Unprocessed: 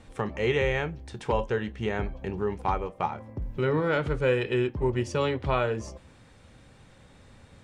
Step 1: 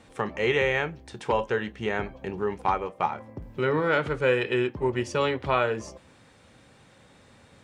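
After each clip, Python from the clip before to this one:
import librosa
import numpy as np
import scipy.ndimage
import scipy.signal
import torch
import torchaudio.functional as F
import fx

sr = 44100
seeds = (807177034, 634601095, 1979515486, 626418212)

y = fx.highpass(x, sr, hz=190.0, slope=6)
y = fx.dynamic_eq(y, sr, hz=1700.0, q=0.71, threshold_db=-39.0, ratio=4.0, max_db=3)
y = F.gain(torch.from_numpy(y), 1.5).numpy()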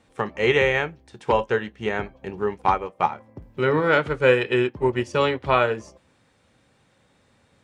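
y = fx.upward_expand(x, sr, threshold_db=-45.0, expansion=1.5)
y = F.gain(torch.from_numpy(y), 6.5).numpy()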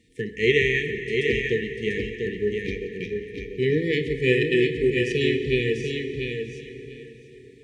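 y = fx.brickwall_bandstop(x, sr, low_hz=490.0, high_hz=1700.0)
y = fx.echo_feedback(y, sr, ms=693, feedback_pct=16, wet_db=-5.0)
y = fx.rev_plate(y, sr, seeds[0], rt60_s=4.9, hf_ratio=0.6, predelay_ms=0, drr_db=8.0)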